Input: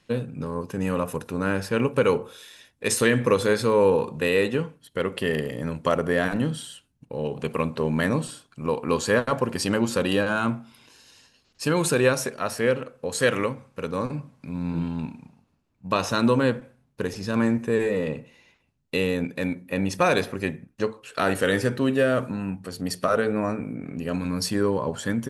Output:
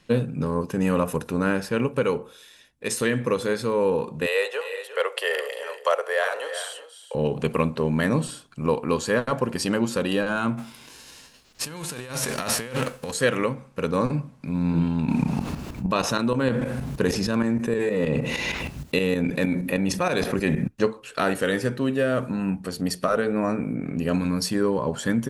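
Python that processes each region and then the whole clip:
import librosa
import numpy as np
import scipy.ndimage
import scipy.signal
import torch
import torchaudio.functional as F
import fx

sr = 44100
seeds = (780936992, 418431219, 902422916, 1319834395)

y = fx.chain(x, sr, fx.steep_highpass(hz=470.0, slope=48),
    fx.echo_multitap(ms=(351, 393), db=(-15.0, -16.5)), at=(4.26, 7.15))
y = fx.envelope_flatten(y, sr, power=0.6, at=(10.57, 13.1), fade=0.02)
y = fx.over_compress(y, sr, threshold_db=-34.0, ratio=-1.0, at=(10.57, 13.1), fade=0.02)
y = fx.chain(y, sr, fx.highpass(hz=41.0, slope=12),
    fx.tremolo_shape(shape='saw_up', hz=6.4, depth_pct=75),
    fx.env_flatten(amount_pct=70), at=(15.08, 20.68))
y = fx.peak_eq(y, sr, hz=99.0, db=-12.5, octaves=0.25)
y = fx.rider(y, sr, range_db=4, speed_s=0.5)
y = fx.low_shelf(y, sr, hz=140.0, db=5.5)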